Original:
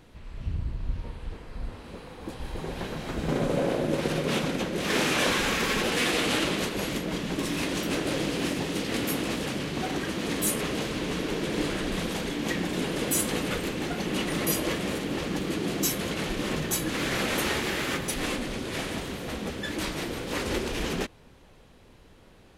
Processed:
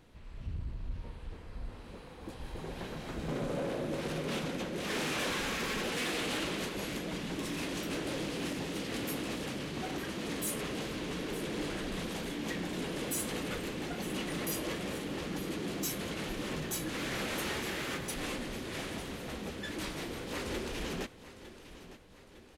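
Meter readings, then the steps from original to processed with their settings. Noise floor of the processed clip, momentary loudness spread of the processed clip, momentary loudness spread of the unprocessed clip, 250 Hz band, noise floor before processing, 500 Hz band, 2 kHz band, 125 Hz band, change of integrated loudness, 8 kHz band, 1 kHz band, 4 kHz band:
-52 dBFS, 13 LU, 10 LU, -8.0 dB, -54 dBFS, -8.0 dB, -8.0 dB, -7.5 dB, -8.0 dB, -8.0 dB, -8.0 dB, -8.0 dB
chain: feedback delay 906 ms, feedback 48%, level -16 dB; saturation -21.5 dBFS, distortion -17 dB; trim -6.5 dB

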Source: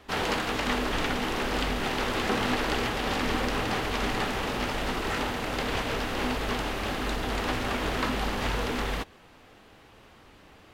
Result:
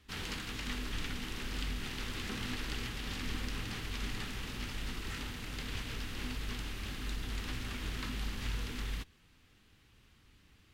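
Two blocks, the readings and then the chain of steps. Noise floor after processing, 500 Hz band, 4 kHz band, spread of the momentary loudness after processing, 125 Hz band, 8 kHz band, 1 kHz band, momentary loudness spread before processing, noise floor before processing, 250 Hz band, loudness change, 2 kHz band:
-65 dBFS, -19.5 dB, -8.5 dB, 2 LU, -6.0 dB, -7.0 dB, -18.5 dB, 3 LU, -54 dBFS, -12.0 dB, -11.0 dB, -12.0 dB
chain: amplifier tone stack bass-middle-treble 6-0-2; trim +7.5 dB

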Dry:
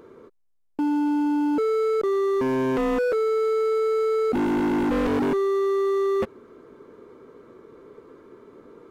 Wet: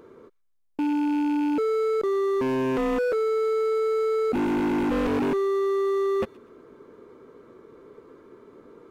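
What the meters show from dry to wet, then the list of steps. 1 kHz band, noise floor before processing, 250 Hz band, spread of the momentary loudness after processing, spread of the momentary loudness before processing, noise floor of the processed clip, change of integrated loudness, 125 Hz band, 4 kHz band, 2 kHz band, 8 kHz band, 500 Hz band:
-1.5 dB, -65 dBFS, -1.5 dB, 1 LU, 1 LU, -66 dBFS, -1.5 dB, -1.5 dB, -0.5 dB, -1.0 dB, no reading, -1.5 dB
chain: rattle on loud lows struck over -29 dBFS, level -31 dBFS; feedback echo behind a high-pass 121 ms, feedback 31%, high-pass 2.4 kHz, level -19.5 dB; trim -1.5 dB

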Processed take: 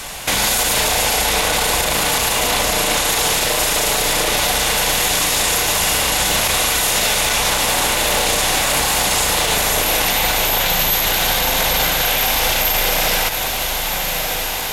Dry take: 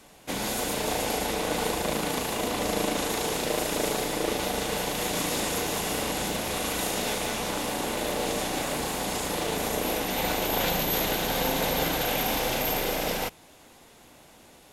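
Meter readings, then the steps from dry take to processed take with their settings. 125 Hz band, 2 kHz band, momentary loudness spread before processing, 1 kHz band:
+8.0 dB, +14.0 dB, 4 LU, +10.5 dB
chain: peaking EQ 280 Hz -14.5 dB 2.3 oct; compression, threshold -34 dBFS, peak gain reduction 9 dB; on a send: echo that smears into a reverb 1262 ms, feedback 66%, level -13.5 dB; on the sum: loudness maximiser +33 dB; trim -6.5 dB

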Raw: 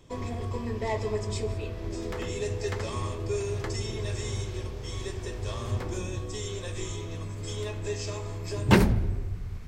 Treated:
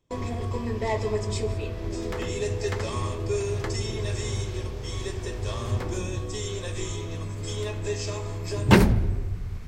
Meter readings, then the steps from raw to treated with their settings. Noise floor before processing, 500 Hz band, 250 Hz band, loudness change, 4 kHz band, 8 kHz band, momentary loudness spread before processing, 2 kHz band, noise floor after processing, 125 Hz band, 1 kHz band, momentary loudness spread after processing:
-37 dBFS, +3.0 dB, +3.0 dB, +3.0 dB, +3.0 dB, +3.0 dB, 8 LU, +3.0 dB, -34 dBFS, +3.0 dB, +3.0 dB, 8 LU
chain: gate with hold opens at -33 dBFS; trim +3 dB

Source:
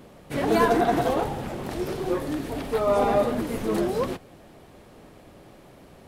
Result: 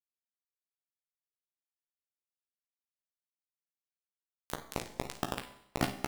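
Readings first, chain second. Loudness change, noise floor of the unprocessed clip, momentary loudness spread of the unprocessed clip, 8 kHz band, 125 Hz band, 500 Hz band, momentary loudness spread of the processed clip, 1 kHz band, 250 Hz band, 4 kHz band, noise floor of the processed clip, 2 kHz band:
-14.5 dB, -50 dBFS, 11 LU, -6.5 dB, -12.5 dB, -22.0 dB, 8 LU, -17.5 dB, -17.5 dB, -8.0 dB, under -85 dBFS, -12.5 dB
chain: one-bit delta coder 32 kbps, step -24 dBFS; reverb removal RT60 0.75 s; tilt shelf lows +3.5 dB, about 700 Hz; compression 4:1, threshold -25 dBFS, peak gain reduction 8.5 dB; peak limiter -25 dBFS, peak gain reduction 8.5 dB; band-pass sweep 3.7 kHz -> 220 Hz, 3.60–4.55 s; bit crusher 5-bit; doubling 15 ms -6.5 dB; early reflections 22 ms -11 dB, 54 ms -13 dB; Schroeder reverb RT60 0.74 s, combs from 31 ms, DRR 10 dB; warped record 33 1/3 rpm, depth 250 cents; trim +6.5 dB

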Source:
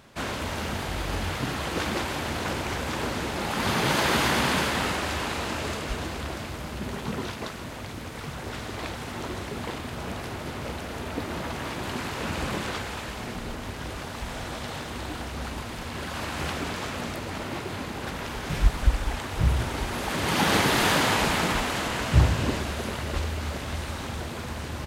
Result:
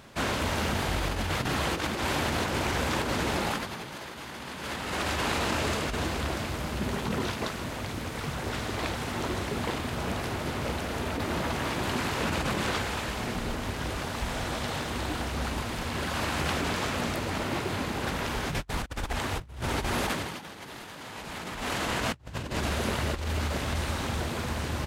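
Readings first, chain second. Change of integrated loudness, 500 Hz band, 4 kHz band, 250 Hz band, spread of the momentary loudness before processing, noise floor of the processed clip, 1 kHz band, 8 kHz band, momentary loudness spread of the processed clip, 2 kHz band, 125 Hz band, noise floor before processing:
-2.0 dB, -1.0 dB, -2.5 dB, -1.5 dB, 13 LU, -42 dBFS, -2.0 dB, -2.0 dB, 6 LU, -2.5 dB, -3.0 dB, -37 dBFS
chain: compressor with a negative ratio -30 dBFS, ratio -0.5

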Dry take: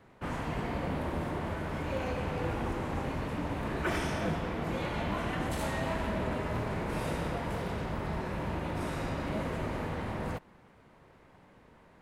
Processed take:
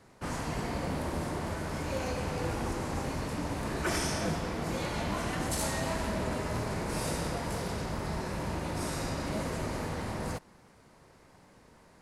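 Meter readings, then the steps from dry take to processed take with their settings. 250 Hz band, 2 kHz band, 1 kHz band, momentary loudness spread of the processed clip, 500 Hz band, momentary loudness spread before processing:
0.0 dB, 0.0 dB, 0.0 dB, 4 LU, 0.0 dB, 3 LU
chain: high-order bell 7.2 kHz +11.5 dB

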